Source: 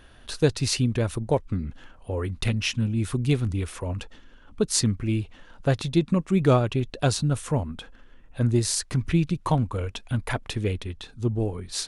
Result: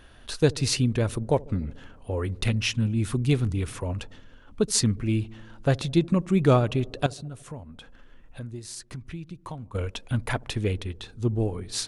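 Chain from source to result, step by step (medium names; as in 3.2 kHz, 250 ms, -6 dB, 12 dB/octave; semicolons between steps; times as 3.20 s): 7.06–9.75 s: compression 3:1, threshold -40 dBFS, peak gain reduction 17 dB; feedback echo behind a low-pass 72 ms, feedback 74%, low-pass 570 Hz, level -22 dB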